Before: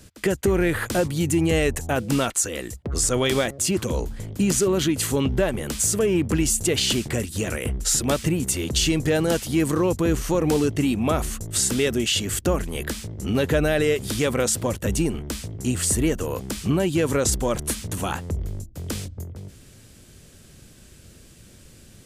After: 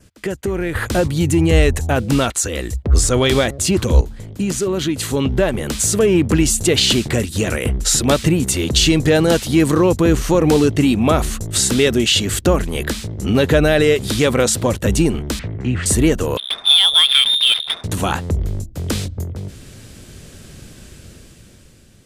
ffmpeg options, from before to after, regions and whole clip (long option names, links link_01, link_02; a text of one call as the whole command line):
ffmpeg -i in.wav -filter_complex "[0:a]asettb=1/sr,asplit=3[link_01][link_02][link_03];[link_01]atrim=end=0.754[link_04];[link_02]atrim=start=0.75:end=4.01,asetpts=PTS-STARTPTS,afade=type=in:duration=0.004:curve=qsin,afade=type=out:start_time=3.256:duration=0.004:curve=qsin,acontrast=47,equalizer=frequency=62:width_type=o:width=0.95:gain=11.5[link_05];[link_03]atrim=start=4.006[link_06];[link_04][link_05]acrossfade=duration=0.004:curve1=hsin:curve2=qsin[link_07];[link_07][link_06]acrossfade=duration=0.004:curve1=qsin:curve2=hsin,asettb=1/sr,asplit=3[link_08][link_09][link_10];[link_08]atrim=end=15.394[link_11];[link_09]atrim=start=15.39:end=15.86,asetpts=PTS-STARTPTS,afade=type=in:duration=0.004:curve=qsin,afade=type=out:start_time=0.466:duration=0.004:curve=qsin,lowpass=frequency=2000:width_type=q:width=2.1,acrossover=split=200|3000[link_12][link_13][link_14];[link_13]acompressor=threshold=-34dB:ratio=2.5:attack=3.2:release=140:knee=2.83:detection=peak[link_15];[link_12][link_15][link_14]amix=inputs=3:normalize=0[link_16];[link_10]atrim=start=15.856[link_17];[link_11][link_16]acrossfade=duration=0.004:curve1=hsin:curve2=qsin[link_18];[link_18][link_17]acrossfade=duration=0.004:curve1=qsin:curve2=hsin,asettb=1/sr,asplit=3[link_19][link_20][link_21];[link_19]atrim=end=16.374[link_22];[link_20]atrim=start=16.37:end=17.84,asetpts=PTS-STARTPTS,afade=type=in:duration=0.004:curve=qsin,afade=type=out:start_time=1.466:duration=0.004:curve=qsin,lowpass=frequency=3100:width_type=q:width=0.5098,lowpass=frequency=3100:width_type=q:width=0.6013,lowpass=frequency=3100:width_type=q:width=0.9,lowpass=frequency=3100:width_type=q:width=2.563,afreqshift=-3700,adynamicsmooth=sensitivity=4.5:basefreq=970[link_23];[link_21]atrim=start=17.836[link_24];[link_22][link_23]acrossfade=duration=0.004:curve1=hsin:curve2=qsin[link_25];[link_25][link_24]acrossfade=duration=0.004:curve1=qsin:curve2=hsin,highshelf=frequency=7500:gain=-5.5,dynaudnorm=framelen=320:gausssize=7:maxgain=11.5dB,adynamicequalizer=threshold=0.0126:dfrequency=3900:dqfactor=4.7:tfrequency=3900:tqfactor=4.7:attack=5:release=100:ratio=0.375:range=2.5:mode=boostabove:tftype=bell,volume=-1dB" out.wav